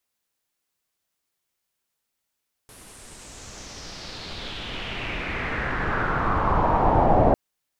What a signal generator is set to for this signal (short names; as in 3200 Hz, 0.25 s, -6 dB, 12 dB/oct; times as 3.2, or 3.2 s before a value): swept filtered noise pink, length 4.65 s lowpass, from 11000 Hz, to 650 Hz, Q 3.3, exponential, gain ramp +31.5 dB